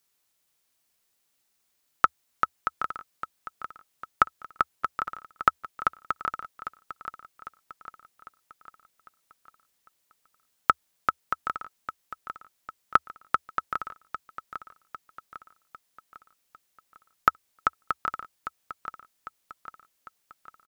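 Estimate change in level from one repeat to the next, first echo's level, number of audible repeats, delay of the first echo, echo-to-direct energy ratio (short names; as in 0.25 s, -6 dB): -6.0 dB, -11.5 dB, 4, 0.801 s, -10.5 dB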